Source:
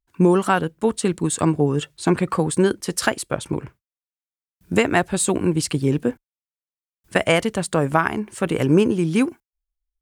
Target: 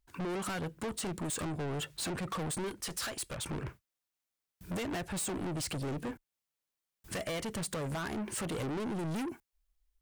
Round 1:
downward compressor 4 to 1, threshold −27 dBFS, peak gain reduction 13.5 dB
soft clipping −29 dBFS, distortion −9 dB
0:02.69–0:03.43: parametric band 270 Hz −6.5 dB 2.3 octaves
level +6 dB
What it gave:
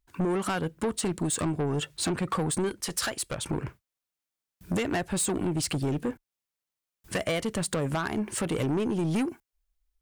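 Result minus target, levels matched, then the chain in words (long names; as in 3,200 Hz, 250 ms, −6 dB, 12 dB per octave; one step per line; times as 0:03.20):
soft clipping: distortion −6 dB
downward compressor 4 to 1, threshold −27 dBFS, peak gain reduction 13.5 dB
soft clipping −40 dBFS, distortion −3 dB
0:02.69–0:03.43: parametric band 270 Hz −6.5 dB 2.3 octaves
level +6 dB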